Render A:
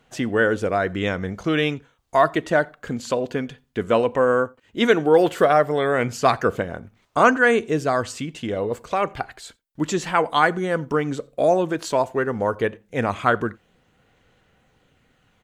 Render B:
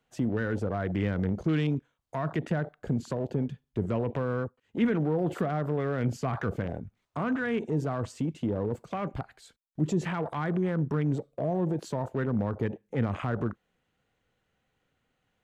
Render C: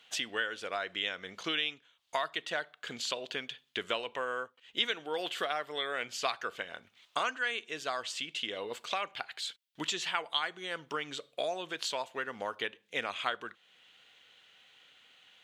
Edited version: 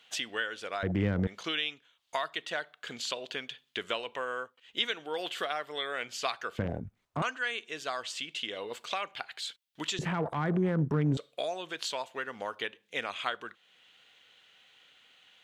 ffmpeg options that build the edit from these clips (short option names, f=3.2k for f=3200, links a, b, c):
-filter_complex "[1:a]asplit=3[a][b][c];[2:a]asplit=4[d][e][f][g];[d]atrim=end=0.832[h];[a]atrim=start=0.828:end=1.272[i];[e]atrim=start=1.268:end=6.592[j];[b]atrim=start=6.588:end=7.222[k];[f]atrim=start=7.218:end=9.992[l];[c]atrim=start=9.988:end=11.172[m];[g]atrim=start=11.168[n];[h][i]acrossfade=d=0.004:c1=hsin:c2=hsin[o];[o][j]acrossfade=d=0.004:c1=hsin:c2=hsin[p];[p][k]acrossfade=d=0.004:c1=hsin:c2=hsin[q];[q][l]acrossfade=d=0.004:c1=hsin:c2=hsin[r];[r][m]acrossfade=d=0.004:c1=hsin:c2=hsin[s];[s][n]acrossfade=d=0.004:c1=hsin:c2=hsin"